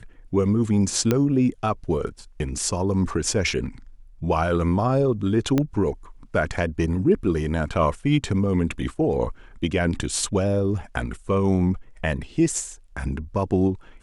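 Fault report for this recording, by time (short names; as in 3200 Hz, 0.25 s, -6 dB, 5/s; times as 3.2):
1.11 pop -7 dBFS
5.58 pop -9 dBFS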